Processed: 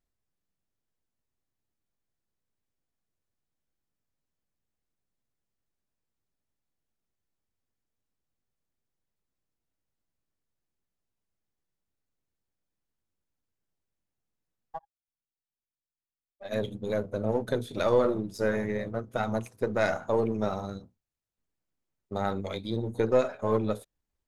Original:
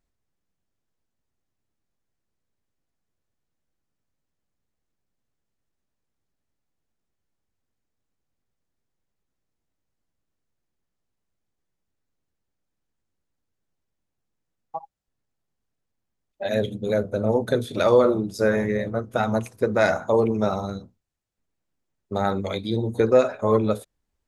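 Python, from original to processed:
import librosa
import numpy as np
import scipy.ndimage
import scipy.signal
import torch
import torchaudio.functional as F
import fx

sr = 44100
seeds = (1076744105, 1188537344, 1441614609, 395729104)

y = np.where(x < 0.0, 10.0 ** (-3.0 / 20.0) * x, x)
y = fx.upward_expand(y, sr, threshold_db=-46.0, expansion=1.5, at=(14.78, 16.51), fade=0.02)
y = F.gain(torch.from_numpy(y), -5.5).numpy()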